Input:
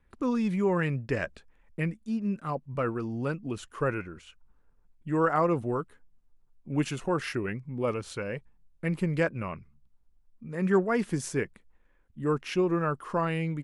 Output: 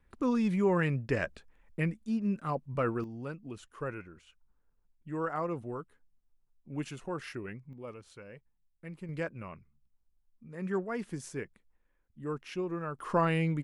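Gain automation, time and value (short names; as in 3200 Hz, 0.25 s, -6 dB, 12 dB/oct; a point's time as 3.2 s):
-1 dB
from 3.04 s -9 dB
from 7.73 s -15 dB
from 9.09 s -9 dB
from 12.99 s +1 dB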